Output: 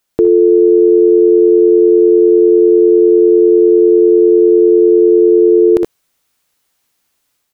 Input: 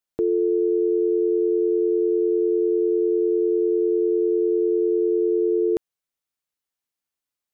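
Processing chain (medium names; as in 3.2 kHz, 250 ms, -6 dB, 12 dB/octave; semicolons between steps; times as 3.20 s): level rider gain up to 6 dB; on a send: early reflections 62 ms -14.5 dB, 77 ms -14.5 dB; on the sum: loudness maximiser +17 dB; trim -1 dB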